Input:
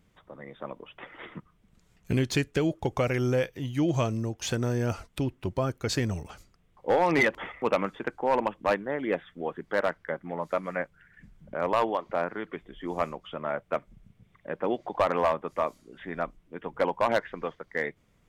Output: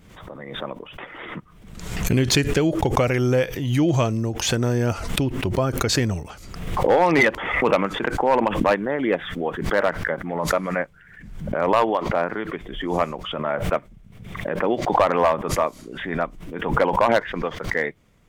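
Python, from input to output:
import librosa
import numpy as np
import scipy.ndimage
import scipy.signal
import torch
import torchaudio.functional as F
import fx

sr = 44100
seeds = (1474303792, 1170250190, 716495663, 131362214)

y = fx.pre_swell(x, sr, db_per_s=53.0)
y = y * librosa.db_to_amplitude(6.0)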